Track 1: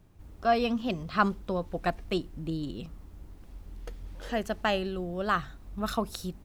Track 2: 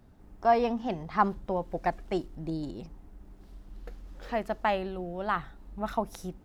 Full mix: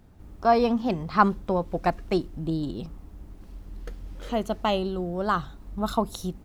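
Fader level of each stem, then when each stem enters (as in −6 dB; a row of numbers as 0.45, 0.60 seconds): −0.5, +1.0 decibels; 0.00, 0.00 seconds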